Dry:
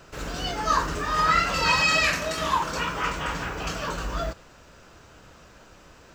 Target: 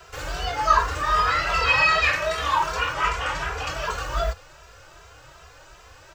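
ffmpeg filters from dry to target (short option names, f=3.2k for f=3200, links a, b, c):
-filter_complex "[0:a]asettb=1/sr,asplit=3[a][b][c];[a]atrim=end=2.934[d];[b]atrim=start=2.93:end=3.68,asetpts=PTS-STARTPTS,afade=t=in:d=0.004:c=qsin,afade=t=out:st=0.746:d=0.004:c=qsin,lowpass=12k[e];[c]atrim=start=3.676[f];[d][e]acrossfade=d=0.004:c1=hsin:c2=qsin[g];[g][f]acrossfade=d=0.004:c1=qsin:c2=hsin,acrossover=split=140|3600[h][i][j];[h]acrusher=samples=15:mix=1:aa=0.000001[k];[i]highpass=500[l];[j]acompressor=threshold=-44dB:ratio=6[m];[k][l][m]amix=inputs=3:normalize=0,asplit=2[n][o];[o]adelay=2.6,afreqshift=2.6[p];[n][p]amix=inputs=2:normalize=1,volume=7dB"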